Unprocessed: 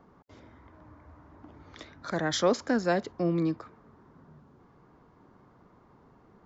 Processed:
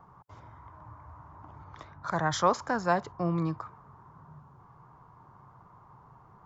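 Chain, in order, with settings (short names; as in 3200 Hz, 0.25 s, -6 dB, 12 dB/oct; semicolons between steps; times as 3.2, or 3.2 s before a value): graphic EQ 125/250/500/1000/2000/4000 Hz +10/-10/-5/+12/-4/-5 dB; 1.64–3.25 mismatched tape noise reduction decoder only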